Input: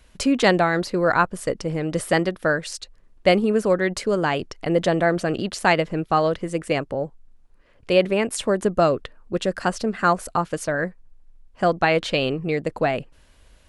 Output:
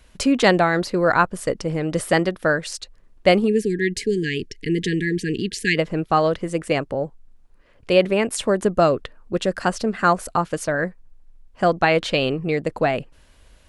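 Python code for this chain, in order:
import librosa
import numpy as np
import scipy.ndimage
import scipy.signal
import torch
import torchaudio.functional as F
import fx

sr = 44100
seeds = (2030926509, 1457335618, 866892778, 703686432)

y = fx.brickwall_bandstop(x, sr, low_hz=470.0, high_hz=1600.0, at=(3.47, 5.76), fade=0.02)
y = y * librosa.db_to_amplitude(1.5)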